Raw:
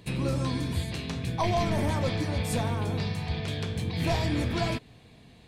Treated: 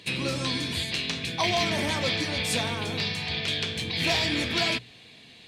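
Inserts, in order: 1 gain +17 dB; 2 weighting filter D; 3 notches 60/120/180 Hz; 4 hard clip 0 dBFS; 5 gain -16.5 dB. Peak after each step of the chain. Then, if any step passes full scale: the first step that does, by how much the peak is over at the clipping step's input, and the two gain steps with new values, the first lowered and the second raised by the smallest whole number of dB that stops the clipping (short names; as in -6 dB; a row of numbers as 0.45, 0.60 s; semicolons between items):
-0.5, +5.0, +4.5, 0.0, -16.5 dBFS; step 2, 4.5 dB; step 1 +12 dB, step 5 -11.5 dB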